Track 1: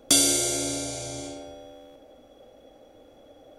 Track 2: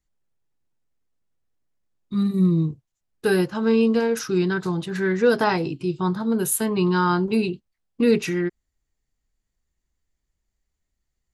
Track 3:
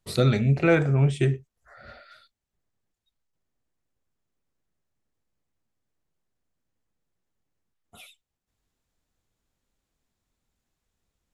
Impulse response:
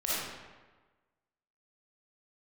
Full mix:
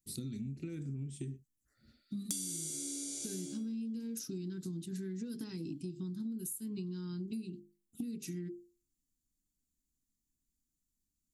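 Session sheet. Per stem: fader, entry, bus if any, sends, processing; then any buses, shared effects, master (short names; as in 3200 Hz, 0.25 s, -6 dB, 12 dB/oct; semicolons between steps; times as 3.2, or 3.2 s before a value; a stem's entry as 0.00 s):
+1.0 dB, 2.20 s, no bus, no send, gate -40 dBFS, range -13 dB; HPF 570 Hz 12 dB/oct
-12.0 dB, 0.00 s, bus A, no send, notches 50/100/150/200/250/300/350/400/450 Hz
-15.0 dB, 0.00 s, bus A, no send, dry
bus A: 0.0 dB, high shelf 3200 Hz +12 dB; compressor 4:1, threshold -35 dBFS, peak gain reduction 13 dB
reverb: off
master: EQ curve 110 Hz 0 dB, 280 Hz +10 dB, 670 Hz -26 dB, 8600 Hz +1 dB; compressor 8:1, threshold -37 dBFS, peak gain reduction 20.5 dB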